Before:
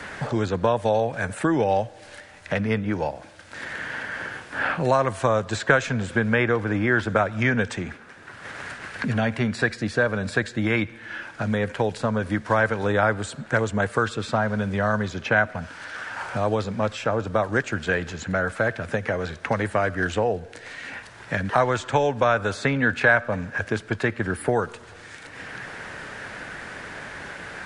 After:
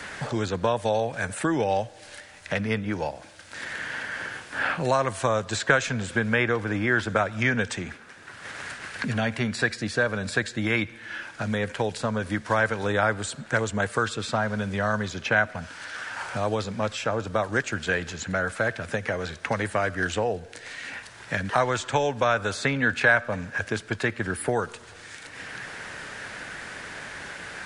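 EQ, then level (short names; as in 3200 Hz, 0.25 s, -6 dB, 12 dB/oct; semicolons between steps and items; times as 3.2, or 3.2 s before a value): high shelf 2500 Hz +8 dB; -3.5 dB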